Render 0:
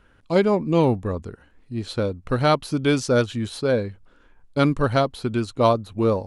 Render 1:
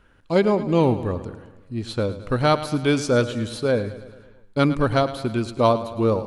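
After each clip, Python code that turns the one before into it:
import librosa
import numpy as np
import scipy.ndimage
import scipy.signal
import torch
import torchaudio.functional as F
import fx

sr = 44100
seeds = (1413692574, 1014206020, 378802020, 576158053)

y = fx.echo_feedback(x, sr, ms=108, feedback_pct=59, wet_db=-14)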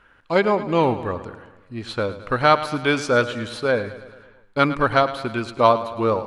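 y = fx.peak_eq(x, sr, hz=1500.0, db=12.5, octaves=3.0)
y = y * librosa.db_to_amplitude(-5.5)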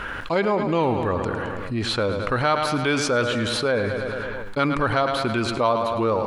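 y = fx.env_flatten(x, sr, amount_pct=70)
y = y * librosa.db_to_amplitude(-7.0)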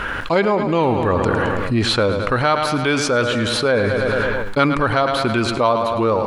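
y = fx.rider(x, sr, range_db=10, speed_s=0.5)
y = y * librosa.db_to_amplitude(5.0)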